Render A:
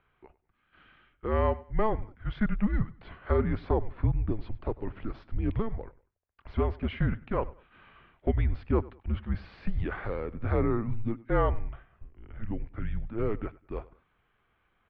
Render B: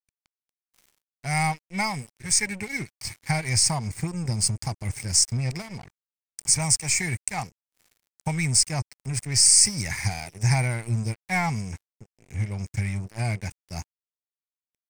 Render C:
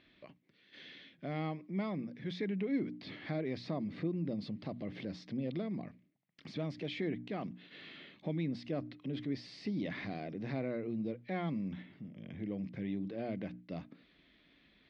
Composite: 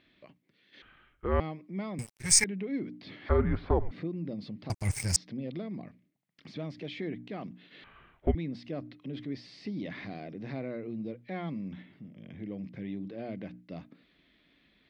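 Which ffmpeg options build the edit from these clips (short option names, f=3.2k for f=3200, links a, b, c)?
-filter_complex "[0:a]asplit=3[a][b][c];[1:a]asplit=2[d][e];[2:a]asplit=6[f][g][h][i][j][k];[f]atrim=end=0.822[l];[a]atrim=start=0.818:end=1.402[m];[g]atrim=start=1.398:end=1.992[n];[d]atrim=start=1.988:end=2.442[o];[h]atrim=start=2.438:end=3.292[p];[b]atrim=start=3.288:end=3.912[q];[i]atrim=start=3.908:end=4.702[r];[e]atrim=start=4.698:end=5.162[s];[j]atrim=start=5.158:end=7.842[t];[c]atrim=start=7.838:end=8.352[u];[k]atrim=start=8.348[v];[l][m]acrossfade=d=0.004:c1=hsin:c2=hsin[w];[w][n]acrossfade=d=0.004:c1=hsin:c2=hsin[x];[x][o]acrossfade=d=0.004:c1=hsin:c2=hsin[y];[y][p]acrossfade=d=0.004:c1=hsin:c2=hsin[z];[z][q]acrossfade=d=0.004:c1=hsin:c2=hsin[aa];[aa][r]acrossfade=d=0.004:c1=hsin:c2=hsin[ab];[ab][s]acrossfade=d=0.004:c1=hsin:c2=hsin[ac];[ac][t]acrossfade=d=0.004:c1=hsin:c2=hsin[ad];[ad][u]acrossfade=d=0.004:c1=hsin:c2=hsin[ae];[ae][v]acrossfade=d=0.004:c1=hsin:c2=hsin"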